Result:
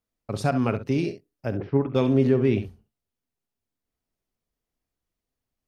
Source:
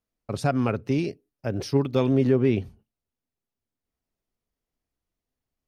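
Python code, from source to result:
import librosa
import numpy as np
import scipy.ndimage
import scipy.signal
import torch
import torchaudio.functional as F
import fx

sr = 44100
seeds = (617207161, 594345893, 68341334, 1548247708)

y = fx.lowpass(x, sr, hz=2000.0, slope=24, at=(1.54, 1.95))
y = fx.echo_multitap(y, sr, ms=(47, 67), db=(-16.5, -12.0))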